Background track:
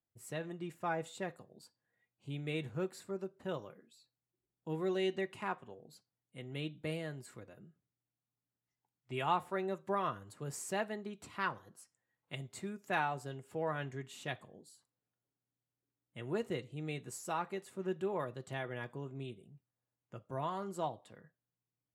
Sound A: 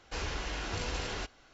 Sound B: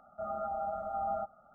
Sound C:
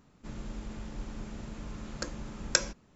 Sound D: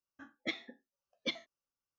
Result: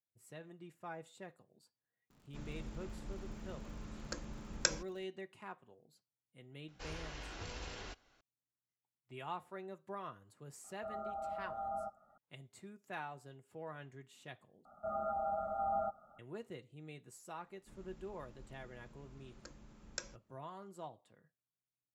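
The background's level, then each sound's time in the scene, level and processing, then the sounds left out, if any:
background track -10.5 dB
2.10 s: add C -6.5 dB + crackle 75 per s -48 dBFS
6.68 s: add A -10.5 dB
10.64 s: add B -6.5 dB
14.65 s: replace with B -1.5 dB
17.43 s: add C -17.5 dB
not used: D

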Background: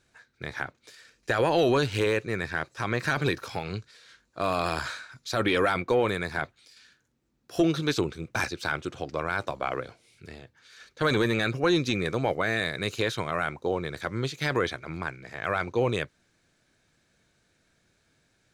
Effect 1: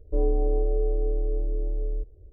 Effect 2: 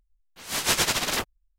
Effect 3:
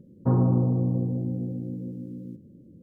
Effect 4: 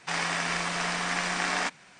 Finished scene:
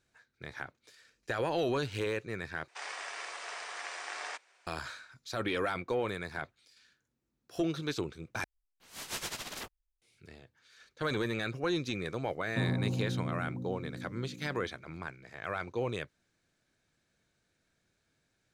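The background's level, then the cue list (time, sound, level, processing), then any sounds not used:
background -8.5 dB
2.68 s: replace with 4 -12 dB + steep high-pass 380 Hz
8.44 s: replace with 2 -15.5 dB
12.30 s: add 3 -10.5 dB
not used: 1

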